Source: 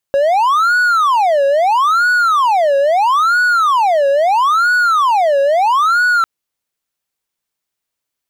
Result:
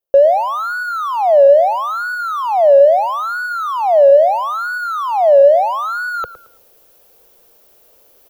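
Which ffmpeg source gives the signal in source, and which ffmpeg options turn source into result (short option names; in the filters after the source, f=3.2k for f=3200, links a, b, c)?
-f lavfi -i "aevalsrc='0.422*(1-4*abs(mod((1011*t-459/(2*PI*0.76)*sin(2*PI*0.76*t))+0.25,1)-0.5))':d=6.1:s=44100"
-filter_complex "[0:a]equalizer=f=125:t=o:w=1:g=-10,equalizer=f=250:t=o:w=1:g=-6,equalizer=f=500:t=o:w=1:g=10,equalizer=f=1k:t=o:w=1:g=-6,equalizer=f=2k:t=o:w=1:g=-11,equalizer=f=4k:t=o:w=1:g=-7,equalizer=f=8k:t=o:w=1:g=-12,areverse,acompressor=mode=upward:threshold=-24dB:ratio=2.5,areverse,asplit=2[a][b];[b]adelay=111,lowpass=f=3.7k:p=1,volume=-14.5dB,asplit=2[c][d];[d]adelay=111,lowpass=f=3.7k:p=1,volume=0.31,asplit=2[e][f];[f]adelay=111,lowpass=f=3.7k:p=1,volume=0.31[g];[a][c][e][g]amix=inputs=4:normalize=0"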